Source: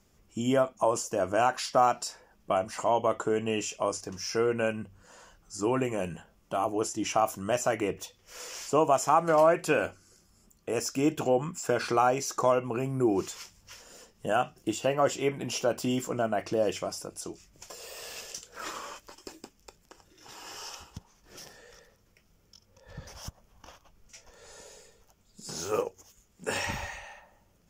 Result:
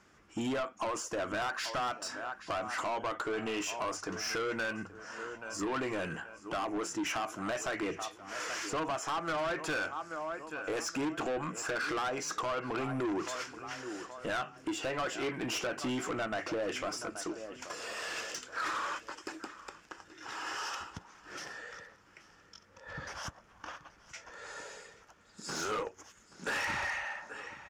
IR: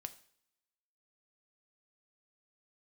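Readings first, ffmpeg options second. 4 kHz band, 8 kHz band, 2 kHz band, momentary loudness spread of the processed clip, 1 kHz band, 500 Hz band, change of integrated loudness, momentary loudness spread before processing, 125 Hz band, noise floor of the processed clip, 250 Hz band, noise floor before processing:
−1.0 dB, −4.5 dB, +1.5 dB, 13 LU, −7.0 dB, −9.5 dB, −7.5 dB, 20 LU, −9.0 dB, −61 dBFS, −5.5 dB, −65 dBFS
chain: -af "equalizer=frequency=310:width_type=o:width=0.35:gain=7,aecho=1:1:829|1658|2487:0.0891|0.0357|0.0143,asoftclip=type=hard:threshold=-16dB,highpass=frequency=110:poles=1,equalizer=frequency=1500:width_type=o:width=1.4:gain=13.5,acompressor=threshold=-26dB:ratio=3,lowpass=8100,asoftclip=type=tanh:threshold=-30dB"

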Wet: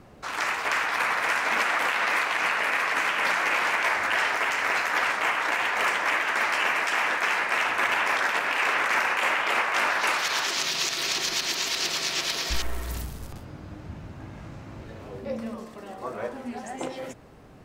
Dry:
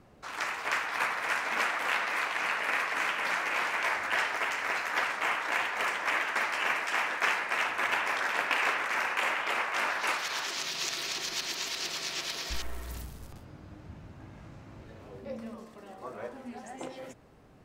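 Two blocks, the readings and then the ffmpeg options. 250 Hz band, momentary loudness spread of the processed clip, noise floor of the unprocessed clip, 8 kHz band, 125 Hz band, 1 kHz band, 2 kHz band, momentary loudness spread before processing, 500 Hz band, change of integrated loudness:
+7.0 dB, 18 LU, −51 dBFS, +6.5 dB, +7.5 dB, +5.5 dB, +5.5 dB, 20 LU, +6.0 dB, +5.5 dB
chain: -af "alimiter=limit=-21.5dB:level=0:latency=1:release=90,volume=7.5dB"

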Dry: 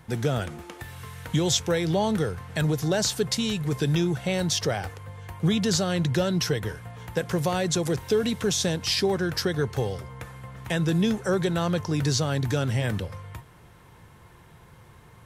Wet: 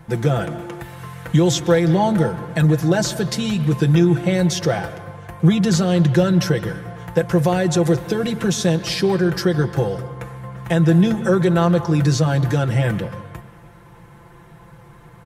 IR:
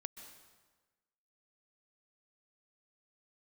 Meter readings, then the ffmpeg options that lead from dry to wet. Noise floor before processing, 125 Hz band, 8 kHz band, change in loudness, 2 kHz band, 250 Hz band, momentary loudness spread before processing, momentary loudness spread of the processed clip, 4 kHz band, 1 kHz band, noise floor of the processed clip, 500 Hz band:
−52 dBFS, +9.0 dB, +1.0 dB, +7.5 dB, +5.5 dB, +9.0 dB, 16 LU, 16 LU, +0.5 dB, +7.5 dB, −45 dBFS, +7.0 dB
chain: -filter_complex "[0:a]aecho=1:1:5.9:0.68,asplit=2[link_01][link_02];[1:a]atrim=start_sample=2205,lowpass=2500[link_03];[link_02][link_03]afir=irnorm=-1:irlink=0,volume=3.5dB[link_04];[link_01][link_04]amix=inputs=2:normalize=0"

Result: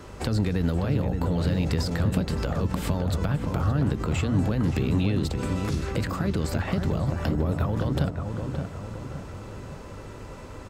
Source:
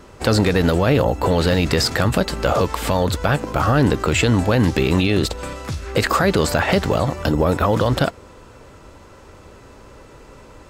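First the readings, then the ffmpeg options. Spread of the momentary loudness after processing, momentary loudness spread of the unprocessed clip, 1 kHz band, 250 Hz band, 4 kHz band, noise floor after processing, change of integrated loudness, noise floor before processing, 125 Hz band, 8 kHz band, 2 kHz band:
15 LU, 4 LU, −13.5 dB, −6.0 dB, −13.5 dB, −41 dBFS, −8.0 dB, −44 dBFS, −4.0 dB, −12.5 dB, −13.5 dB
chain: -filter_complex "[0:a]acompressor=threshold=-19dB:ratio=3,aeval=exprs='val(0)+0.00631*(sin(2*PI*50*n/s)+sin(2*PI*2*50*n/s)/2+sin(2*PI*3*50*n/s)/3+sin(2*PI*4*50*n/s)/4+sin(2*PI*5*50*n/s)/5)':channel_layout=same,acrossover=split=250[link_01][link_02];[link_02]acompressor=threshold=-33dB:ratio=5[link_03];[link_01][link_03]amix=inputs=2:normalize=0,bandreject=frequency=60:width_type=h:width=6,bandreject=frequency=120:width_type=h:width=6,asplit=2[link_04][link_05];[link_05]adelay=571,lowpass=frequency=1500:poles=1,volume=-5dB,asplit=2[link_06][link_07];[link_07]adelay=571,lowpass=frequency=1500:poles=1,volume=0.5,asplit=2[link_08][link_09];[link_09]adelay=571,lowpass=frequency=1500:poles=1,volume=0.5,asplit=2[link_10][link_11];[link_11]adelay=571,lowpass=frequency=1500:poles=1,volume=0.5,asplit=2[link_12][link_13];[link_13]adelay=571,lowpass=frequency=1500:poles=1,volume=0.5,asplit=2[link_14][link_15];[link_15]adelay=571,lowpass=frequency=1500:poles=1,volume=0.5[link_16];[link_06][link_08][link_10][link_12][link_14][link_16]amix=inputs=6:normalize=0[link_17];[link_04][link_17]amix=inputs=2:normalize=0"

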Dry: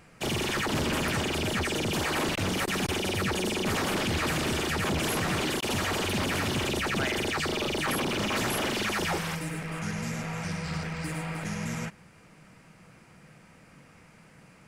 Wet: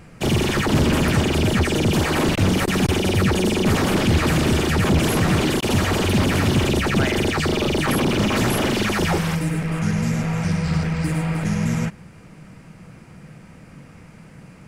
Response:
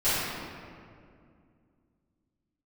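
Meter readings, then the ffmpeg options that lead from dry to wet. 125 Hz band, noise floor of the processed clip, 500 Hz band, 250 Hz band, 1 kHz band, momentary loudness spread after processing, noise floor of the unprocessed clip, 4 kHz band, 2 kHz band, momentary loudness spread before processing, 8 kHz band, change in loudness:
+13.5 dB, −45 dBFS, +9.0 dB, +11.5 dB, +6.5 dB, 4 LU, −55 dBFS, +5.0 dB, +5.5 dB, 6 LU, +5.0 dB, +9.0 dB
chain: -af "lowshelf=frequency=380:gain=9.5,volume=5dB"

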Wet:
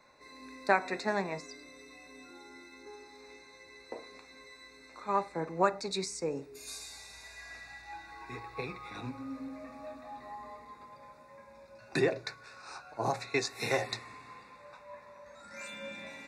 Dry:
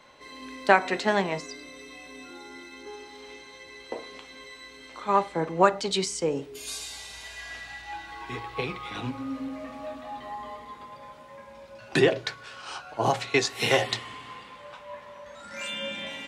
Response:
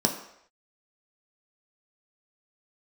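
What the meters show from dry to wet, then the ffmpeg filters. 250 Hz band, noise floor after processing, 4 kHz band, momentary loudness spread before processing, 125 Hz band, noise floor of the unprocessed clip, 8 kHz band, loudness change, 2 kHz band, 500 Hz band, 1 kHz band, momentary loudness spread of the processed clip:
−7.5 dB, −56 dBFS, −10.0 dB, 21 LU, −7.5 dB, −48 dBFS, −7.5 dB, −7.5 dB, −7.5 dB, −7.5 dB, −7.5 dB, 21 LU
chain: -af "asuperstop=centerf=3100:order=8:qfactor=3.4,volume=-7.5dB"

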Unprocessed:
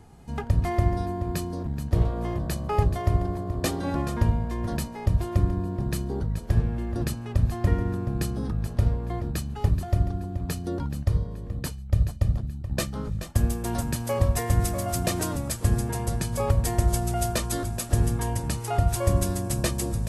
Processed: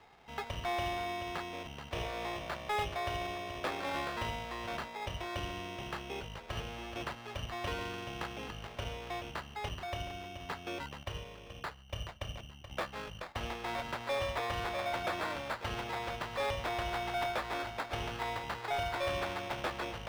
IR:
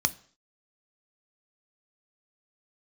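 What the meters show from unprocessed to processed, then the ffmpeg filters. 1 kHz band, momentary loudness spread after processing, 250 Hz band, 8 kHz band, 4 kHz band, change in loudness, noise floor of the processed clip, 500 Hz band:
−2.5 dB, 8 LU, −15.5 dB, −18.0 dB, −1.5 dB, −11.0 dB, −51 dBFS, −7.0 dB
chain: -filter_complex "[0:a]acrusher=samples=15:mix=1:aa=0.000001,acrossover=split=500 4700:gain=0.1 1 0.158[link_01][link_02][link_03];[link_01][link_02][link_03]amix=inputs=3:normalize=0,asoftclip=type=tanh:threshold=-27.5dB"

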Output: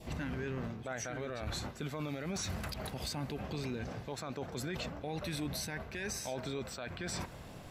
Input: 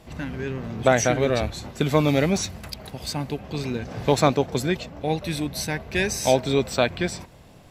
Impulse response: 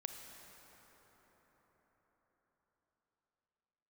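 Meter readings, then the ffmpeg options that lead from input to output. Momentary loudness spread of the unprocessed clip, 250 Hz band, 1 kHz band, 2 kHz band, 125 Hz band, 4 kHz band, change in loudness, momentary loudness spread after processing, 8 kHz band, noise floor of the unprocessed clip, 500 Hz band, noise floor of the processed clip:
11 LU, −14.5 dB, −17.0 dB, −14.0 dB, −13.5 dB, −12.0 dB, −15.5 dB, 4 LU, −12.0 dB, −49 dBFS, −18.5 dB, −49 dBFS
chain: -af "adynamicequalizer=threshold=0.01:dfrequency=1400:dqfactor=1.8:tfrequency=1400:tqfactor=1.8:attack=5:release=100:ratio=0.375:range=3.5:mode=boostabove:tftype=bell,areverse,acompressor=threshold=-29dB:ratio=10,areverse,alimiter=level_in=5dB:limit=-24dB:level=0:latency=1:release=48,volume=-5dB"

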